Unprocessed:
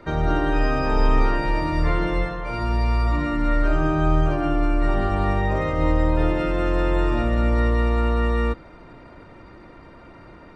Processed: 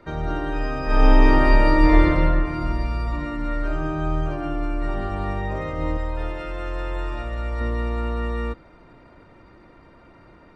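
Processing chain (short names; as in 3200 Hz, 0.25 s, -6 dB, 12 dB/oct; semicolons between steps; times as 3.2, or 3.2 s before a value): 0.84–2.04 reverb throw, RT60 2.6 s, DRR -8.5 dB; 5.97–7.61 bell 210 Hz -11.5 dB 1.8 oct; gain -5 dB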